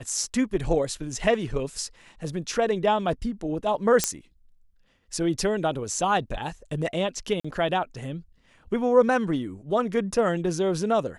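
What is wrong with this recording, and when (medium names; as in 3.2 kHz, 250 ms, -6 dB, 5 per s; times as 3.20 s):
4.04 s: pop -4 dBFS
7.40–7.45 s: dropout 45 ms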